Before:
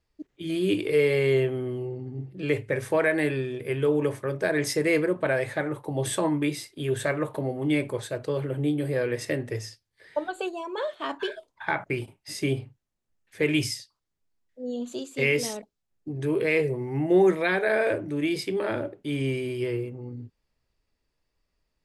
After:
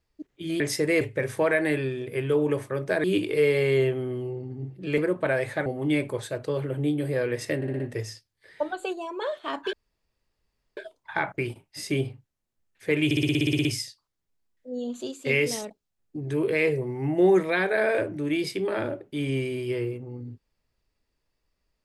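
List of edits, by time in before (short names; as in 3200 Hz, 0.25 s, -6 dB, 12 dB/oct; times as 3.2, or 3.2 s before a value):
0.6–2.54 swap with 4.57–4.98
5.66–7.46 cut
9.36 stutter 0.06 s, 5 plays
11.29 insert room tone 1.04 s
13.57 stutter 0.06 s, 11 plays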